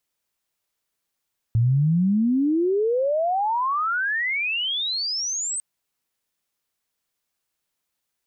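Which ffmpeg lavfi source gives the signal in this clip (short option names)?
-f lavfi -i "aevalsrc='pow(10,(-15.5-9*t/4.05)/20)*sin(2*PI*110*4.05/log(8400/110)*(exp(log(8400/110)*t/4.05)-1))':d=4.05:s=44100"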